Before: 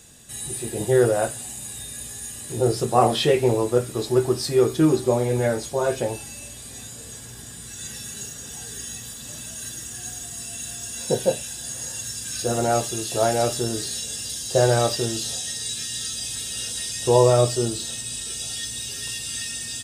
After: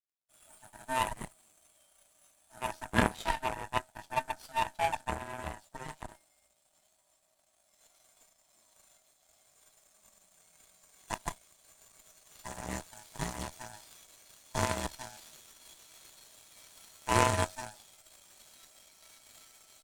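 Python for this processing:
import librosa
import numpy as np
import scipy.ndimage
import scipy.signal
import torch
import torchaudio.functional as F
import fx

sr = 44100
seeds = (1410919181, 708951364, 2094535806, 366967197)

y = fx.band_swap(x, sr, width_hz=500)
y = np.sign(y) * np.maximum(np.abs(y) - 10.0 ** (-42.0 / 20.0), 0.0)
y = fx.cheby_harmonics(y, sr, harmonics=(3, 6, 8), levels_db=(-10, -33, -29), full_scale_db=-4.5)
y = y * 10.0 ** (-2.0 / 20.0)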